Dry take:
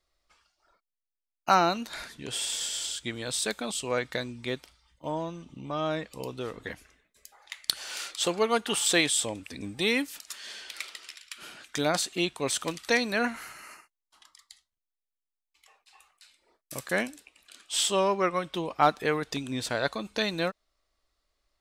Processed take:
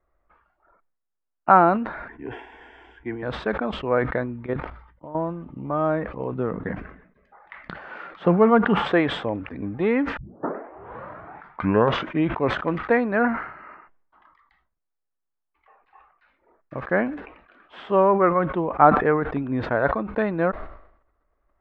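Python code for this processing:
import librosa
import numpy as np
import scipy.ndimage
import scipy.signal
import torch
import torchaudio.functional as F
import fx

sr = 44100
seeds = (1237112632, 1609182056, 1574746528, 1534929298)

y = fx.fixed_phaser(x, sr, hz=840.0, stages=8, at=(2.08, 3.23))
y = fx.level_steps(y, sr, step_db=15, at=(4.46, 5.15))
y = fx.peak_eq(y, sr, hz=180.0, db=10.5, octaves=0.77, at=(6.35, 8.91))
y = fx.edit(y, sr, fx.tape_start(start_s=10.17, length_s=2.26), tone=tone)
y = scipy.signal.sosfilt(scipy.signal.butter(4, 1600.0, 'lowpass', fs=sr, output='sos'), y)
y = fx.sustainer(y, sr, db_per_s=82.0)
y = y * 10.0 ** (7.5 / 20.0)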